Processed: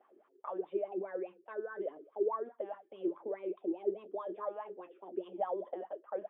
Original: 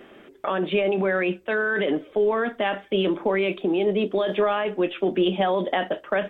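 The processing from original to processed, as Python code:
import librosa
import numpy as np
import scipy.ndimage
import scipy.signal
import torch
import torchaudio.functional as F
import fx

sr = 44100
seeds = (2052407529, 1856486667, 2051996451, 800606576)

y = fx.wah_lfo(x, sr, hz=4.8, low_hz=340.0, high_hz=1100.0, q=9.6)
y = y * librosa.db_to_amplitude(-4.5)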